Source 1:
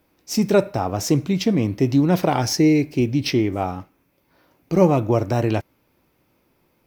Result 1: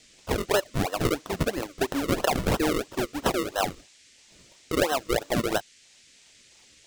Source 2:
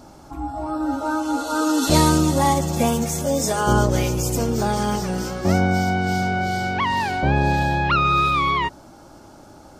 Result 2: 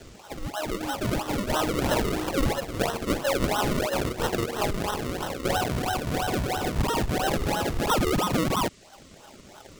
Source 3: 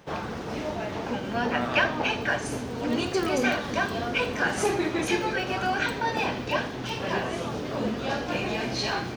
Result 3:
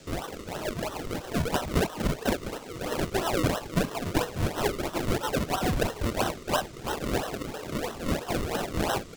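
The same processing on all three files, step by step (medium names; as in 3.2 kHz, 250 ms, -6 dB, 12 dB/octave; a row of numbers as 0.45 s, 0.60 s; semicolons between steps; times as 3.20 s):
reverb removal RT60 1.1 s; Bessel high-pass 630 Hz, order 4; dynamic bell 900 Hz, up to -5 dB, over -42 dBFS, Q 4.3; compression 4:1, threshold -26 dBFS; decimation with a swept rate 37×, swing 100% 3 Hz; band noise 1.8–8 kHz -62 dBFS; peak normalisation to -12 dBFS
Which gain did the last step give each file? +5.5 dB, +4.5 dB, +5.0 dB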